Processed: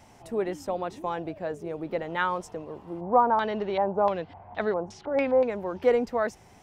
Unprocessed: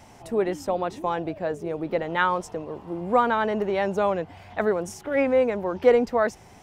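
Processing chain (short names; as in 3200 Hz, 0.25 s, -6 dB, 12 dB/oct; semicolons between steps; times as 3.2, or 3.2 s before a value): 3–5.48 LFO low-pass square 0.87 Hz -> 4.7 Hz 910–4100 Hz; gain -4.5 dB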